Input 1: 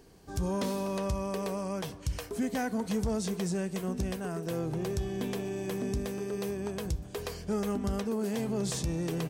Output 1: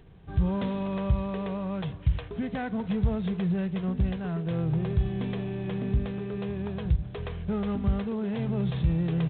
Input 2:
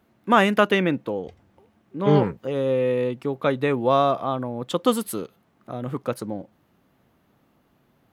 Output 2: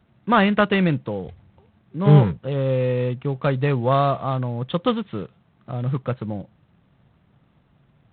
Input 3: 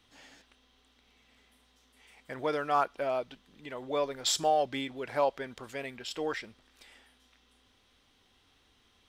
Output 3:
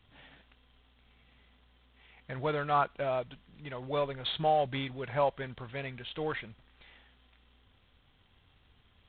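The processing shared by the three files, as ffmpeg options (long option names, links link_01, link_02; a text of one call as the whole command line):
ffmpeg -i in.wav -af "lowshelf=frequency=200:width_type=q:width=1.5:gain=8" -ar 8000 -c:a adpcm_g726 -b:a 24k out.wav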